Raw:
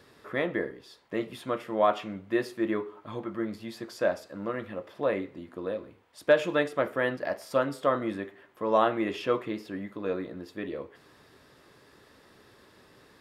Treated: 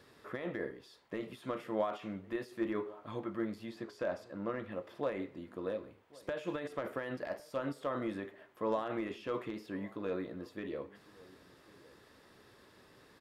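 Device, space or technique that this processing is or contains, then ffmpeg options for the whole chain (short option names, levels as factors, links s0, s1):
de-esser from a sidechain: -filter_complex "[0:a]asettb=1/sr,asplit=3[s0][s1][s2];[s0]atrim=end=3.694[s3];[s1]atrim=start=3.69:end=4.72,asetpts=PTS-STARTPTS,afade=t=in:d=0.004:c=qsin,afade=t=out:st=1.026:d=0.004:c=qsin,aemphasis=mode=reproduction:type=cd[s4];[s2]atrim=start=4.716[s5];[s3][s4]acrossfade=d=0.004:c1=hsin:c2=qsin[s6];[s6][s5]acrossfade=d=0.004:c1=qsin:c2=hsin,asplit=2[s7][s8];[s8]highpass=4800,apad=whole_len=582360[s9];[s7][s9]sidechaincompress=threshold=0.00178:ratio=6:attack=2:release=37,asplit=2[s10][s11];[s11]adelay=1108,volume=0.0891,highshelf=f=4000:g=-24.9[s12];[s10][s12]amix=inputs=2:normalize=0,volume=0.631"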